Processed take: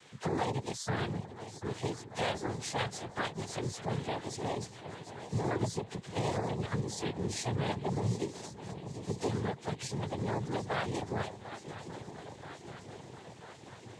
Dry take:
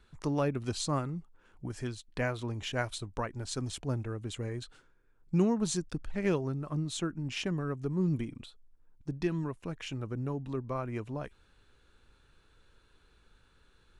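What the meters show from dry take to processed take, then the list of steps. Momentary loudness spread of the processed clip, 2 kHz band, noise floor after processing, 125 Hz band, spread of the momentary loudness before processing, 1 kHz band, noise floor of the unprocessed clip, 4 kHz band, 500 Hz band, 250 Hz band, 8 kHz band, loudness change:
13 LU, +1.0 dB, -52 dBFS, -1.5 dB, 10 LU, +4.5 dB, -66 dBFS, 0.0 dB, -0.5 dB, -4.0 dB, -0.5 dB, -2.0 dB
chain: frequency axis rescaled in octaves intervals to 124%; short-mantissa float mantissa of 4-bit; peak limiter -28 dBFS, peak gain reduction 9 dB; on a send: shuffle delay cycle 985 ms, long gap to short 3:1, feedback 57%, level -16.5 dB; on the sum: noise-vocoded speech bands 6; peaking EQ 200 Hz -8.5 dB 1.4 oct; three bands compressed up and down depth 40%; trim +7.5 dB

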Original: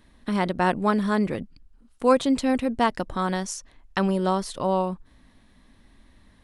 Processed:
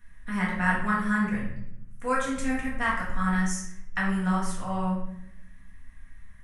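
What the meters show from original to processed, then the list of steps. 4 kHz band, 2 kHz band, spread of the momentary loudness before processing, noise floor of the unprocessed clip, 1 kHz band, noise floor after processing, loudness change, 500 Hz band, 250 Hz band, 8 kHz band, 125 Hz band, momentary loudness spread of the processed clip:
-7.5 dB, +4.5 dB, 11 LU, -57 dBFS, -4.5 dB, -46 dBFS, -3.5 dB, -11.5 dB, -3.5 dB, -0.5 dB, 0.0 dB, 11 LU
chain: FFT filter 100 Hz 0 dB, 340 Hz -21 dB, 940 Hz -10 dB, 1.8 kHz +2 dB, 4.3 kHz -18 dB, 6.2 kHz -3 dB; flange 1.2 Hz, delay 3.9 ms, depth 6.5 ms, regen +55%; simulated room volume 210 m³, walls mixed, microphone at 1.8 m; trim +2.5 dB

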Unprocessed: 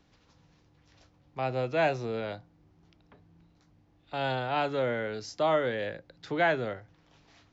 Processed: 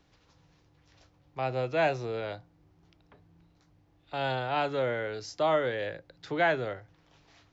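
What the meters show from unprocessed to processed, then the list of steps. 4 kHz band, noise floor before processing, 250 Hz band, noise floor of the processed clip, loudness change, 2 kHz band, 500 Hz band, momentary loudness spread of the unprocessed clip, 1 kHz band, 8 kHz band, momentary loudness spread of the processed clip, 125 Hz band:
0.0 dB, -65 dBFS, -2.0 dB, -66 dBFS, 0.0 dB, 0.0 dB, 0.0 dB, 13 LU, 0.0 dB, no reading, 13 LU, -0.5 dB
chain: peaking EQ 220 Hz -8 dB 0.35 oct

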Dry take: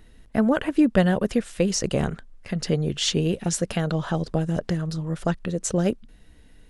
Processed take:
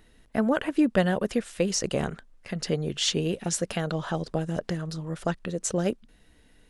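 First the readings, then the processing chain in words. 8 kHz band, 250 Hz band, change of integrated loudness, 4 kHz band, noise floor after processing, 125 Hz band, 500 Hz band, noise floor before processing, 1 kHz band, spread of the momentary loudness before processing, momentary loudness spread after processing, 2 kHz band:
-1.5 dB, -4.5 dB, -3.5 dB, -1.5 dB, -58 dBFS, -6.0 dB, -2.5 dB, -51 dBFS, -2.0 dB, 8 LU, 9 LU, -1.5 dB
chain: bass shelf 190 Hz -7.5 dB; trim -1.5 dB

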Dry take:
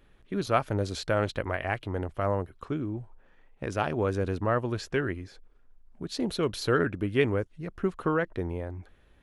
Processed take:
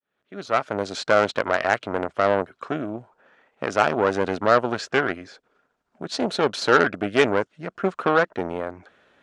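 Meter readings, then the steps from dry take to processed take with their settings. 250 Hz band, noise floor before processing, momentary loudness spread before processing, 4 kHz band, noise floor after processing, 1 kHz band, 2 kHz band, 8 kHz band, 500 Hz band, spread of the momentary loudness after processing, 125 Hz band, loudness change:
+3.5 dB, -60 dBFS, 11 LU, +8.0 dB, -75 dBFS, +9.5 dB, +10.0 dB, +6.0 dB, +7.0 dB, 13 LU, -4.5 dB, +7.0 dB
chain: fade-in on the opening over 1.20 s; Chebyshev shaper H 8 -20 dB, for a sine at -10.5 dBFS; cabinet simulation 250–7900 Hz, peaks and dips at 330 Hz -4 dB, 640 Hz +4 dB, 1.4 kHz +6 dB; trim +7 dB

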